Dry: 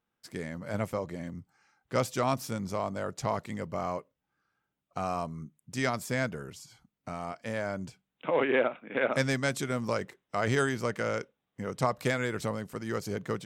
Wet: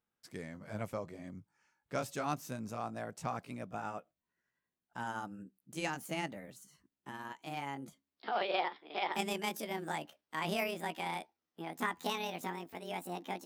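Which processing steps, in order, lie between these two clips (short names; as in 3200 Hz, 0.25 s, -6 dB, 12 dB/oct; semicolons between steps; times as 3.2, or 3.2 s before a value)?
gliding pitch shift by +10 st starting unshifted; gain -6.5 dB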